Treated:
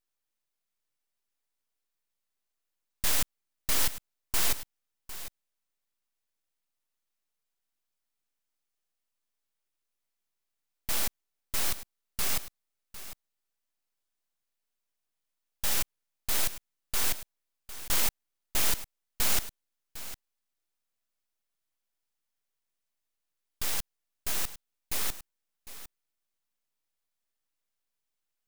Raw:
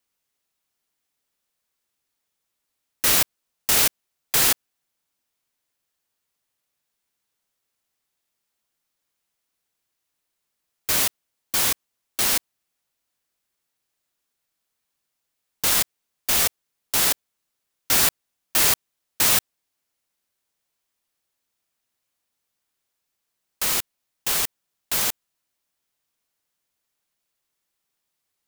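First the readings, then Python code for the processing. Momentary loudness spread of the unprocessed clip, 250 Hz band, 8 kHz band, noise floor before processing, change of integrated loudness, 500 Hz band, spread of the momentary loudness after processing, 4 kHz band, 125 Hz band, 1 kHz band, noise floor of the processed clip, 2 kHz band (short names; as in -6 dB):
10 LU, -9.0 dB, -10.0 dB, -80 dBFS, -10.0 dB, -9.5 dB, 19 LU, -10.0 dB, -5.0 dB, -9.5 dB, -84 dBFS, -10.0 dB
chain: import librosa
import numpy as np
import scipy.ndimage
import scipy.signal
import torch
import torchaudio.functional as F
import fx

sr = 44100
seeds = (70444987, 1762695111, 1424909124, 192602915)

p1 = fx.peak_eq(x, sr, hz=9600.0, db=4.0, octaves=0.77)
p2 = np.abs(p1)
p3 = p2 + fx.echo_single(p2, sr, ms=754, db=-14.5, dry=0)
y = p3 * librosa.db_to_amplitude(-7.0)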